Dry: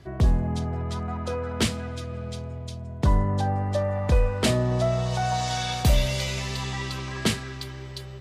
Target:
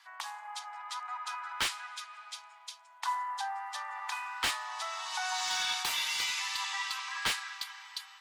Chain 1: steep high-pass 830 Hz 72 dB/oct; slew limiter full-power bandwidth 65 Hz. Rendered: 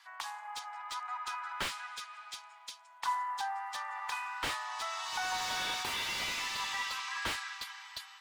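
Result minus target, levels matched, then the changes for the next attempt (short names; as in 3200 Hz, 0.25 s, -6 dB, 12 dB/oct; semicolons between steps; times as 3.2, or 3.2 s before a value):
slew limiter: distortion +6 dB
change: slew limiter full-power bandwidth 168 Hz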